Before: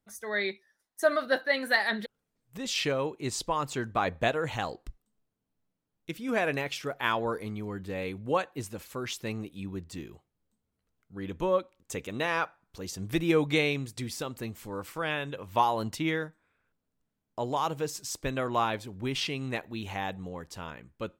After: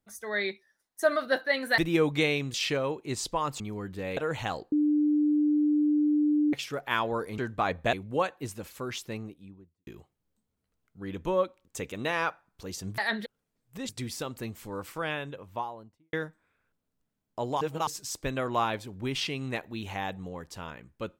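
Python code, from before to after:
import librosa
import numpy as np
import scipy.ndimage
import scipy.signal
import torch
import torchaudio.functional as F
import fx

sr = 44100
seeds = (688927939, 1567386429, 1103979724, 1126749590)

y = fx.studio_fade_out(x, sr, start_s=9.0, length_s=1.02)
y = fx.studio_fade_out(y, sr, start_s=14.91, length_s=1.22)
y = fx.edit(y, sr, fx.swap(start_s=1.78, length_s=0.91, other_s=13.13, other_length_s=0.76),
    fx.swap(start_s=3.75, length_s=0.55, other_s=7.51, other_length_s=0.57),
    fx.bleep(start_s=4.85, length_s=1.81, hz=298.0, db=-21.0),
    fx.reverse_span(start_s=17.61, length_s=0.26), tone=tone)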